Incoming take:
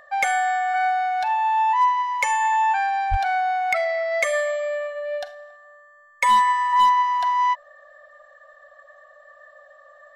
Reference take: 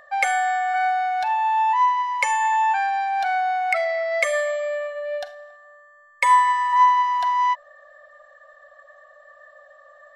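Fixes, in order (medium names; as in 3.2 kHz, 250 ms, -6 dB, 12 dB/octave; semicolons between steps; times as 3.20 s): clip repair -12.5 dBFS; de-plosive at 3.10 s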